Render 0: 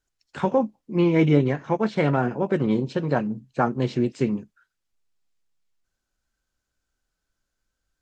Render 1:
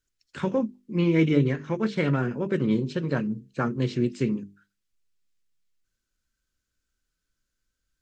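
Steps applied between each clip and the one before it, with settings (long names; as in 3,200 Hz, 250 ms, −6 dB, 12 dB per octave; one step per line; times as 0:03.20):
parametric band 770 Hz −13.5 dB 0.83 octaves
mains-hum notches 50/100/150/200/250/300/350/400/450 Hz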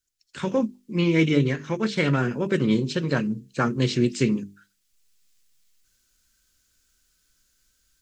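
high-shelf EQ 2,800 Hz +11.5 dB
automatic gain control gain up to 15 dB
level −7 dB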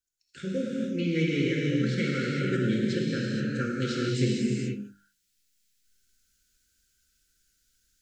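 elliptic band-stop filter 520–1,400 Hz, stop band 40 dB
reverb whose tail is shaped and stops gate 500 ms flat, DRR −4 dB
level −8.5 dB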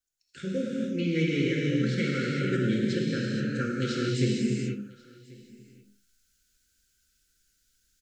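single-tap delay 1,088 ms −24 dB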